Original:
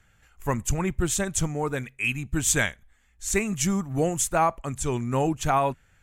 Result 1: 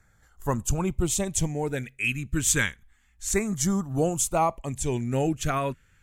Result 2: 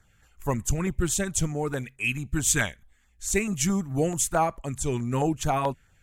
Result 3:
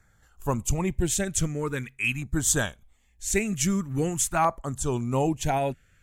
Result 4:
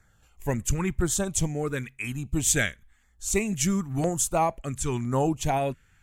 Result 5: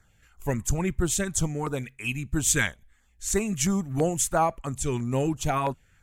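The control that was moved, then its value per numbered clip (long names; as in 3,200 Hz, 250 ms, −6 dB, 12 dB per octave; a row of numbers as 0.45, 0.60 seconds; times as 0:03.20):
auto-filter notch, speed: 0.3, 4.6, 0.45, 0.99, 3 Hertz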